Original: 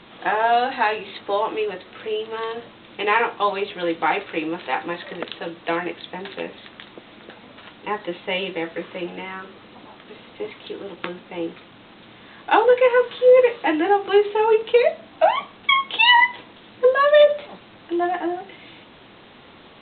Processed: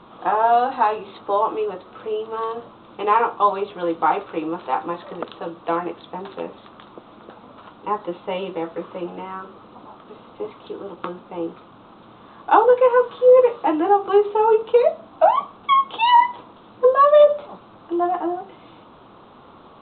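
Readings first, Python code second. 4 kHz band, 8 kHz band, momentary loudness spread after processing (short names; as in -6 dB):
-9.0 dB, n/a, 19 LU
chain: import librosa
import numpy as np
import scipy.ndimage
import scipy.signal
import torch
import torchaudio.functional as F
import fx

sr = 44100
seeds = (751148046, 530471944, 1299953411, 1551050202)

y = fx.high_shelf_res(x, sr, hz=1500.0, db=-7.0, q=3.0)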